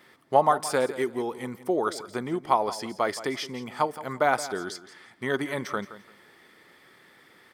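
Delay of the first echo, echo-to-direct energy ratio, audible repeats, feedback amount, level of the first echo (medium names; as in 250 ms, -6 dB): 171 ms, -14.5 dB, 2, 24%, -15.0 dB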